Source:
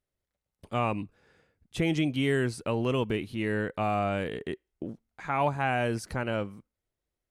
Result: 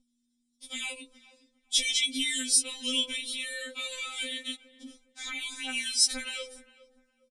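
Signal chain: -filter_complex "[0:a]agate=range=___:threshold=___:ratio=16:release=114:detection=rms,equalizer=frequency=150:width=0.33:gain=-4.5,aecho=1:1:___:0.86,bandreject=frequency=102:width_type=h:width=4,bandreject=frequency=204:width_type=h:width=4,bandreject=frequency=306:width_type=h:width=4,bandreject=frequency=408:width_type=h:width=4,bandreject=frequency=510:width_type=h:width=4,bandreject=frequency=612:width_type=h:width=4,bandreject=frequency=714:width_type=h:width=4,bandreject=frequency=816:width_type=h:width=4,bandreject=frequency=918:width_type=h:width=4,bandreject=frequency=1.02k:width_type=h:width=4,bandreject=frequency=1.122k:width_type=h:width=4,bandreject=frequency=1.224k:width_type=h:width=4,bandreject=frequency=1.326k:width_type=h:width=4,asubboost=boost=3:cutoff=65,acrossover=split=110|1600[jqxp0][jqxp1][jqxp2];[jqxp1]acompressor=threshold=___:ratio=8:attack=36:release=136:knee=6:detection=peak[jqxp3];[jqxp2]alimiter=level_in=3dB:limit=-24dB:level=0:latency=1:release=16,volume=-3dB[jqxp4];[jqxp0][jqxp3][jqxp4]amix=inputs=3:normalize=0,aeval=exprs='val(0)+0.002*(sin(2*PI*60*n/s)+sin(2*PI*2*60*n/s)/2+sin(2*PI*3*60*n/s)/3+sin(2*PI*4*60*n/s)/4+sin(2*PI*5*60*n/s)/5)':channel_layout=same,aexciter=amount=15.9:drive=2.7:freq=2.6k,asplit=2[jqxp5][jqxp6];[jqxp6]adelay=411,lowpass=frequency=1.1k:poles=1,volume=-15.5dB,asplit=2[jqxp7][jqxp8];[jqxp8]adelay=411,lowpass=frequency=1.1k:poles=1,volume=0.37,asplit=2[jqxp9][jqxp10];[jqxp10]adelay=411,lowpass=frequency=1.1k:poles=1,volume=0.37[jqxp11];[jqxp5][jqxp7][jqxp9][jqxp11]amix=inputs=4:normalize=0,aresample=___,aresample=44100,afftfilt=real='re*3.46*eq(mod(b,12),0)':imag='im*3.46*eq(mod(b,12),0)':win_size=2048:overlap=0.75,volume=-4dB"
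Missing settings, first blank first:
-9dB, -53dB, 7.2, -36dB, 22050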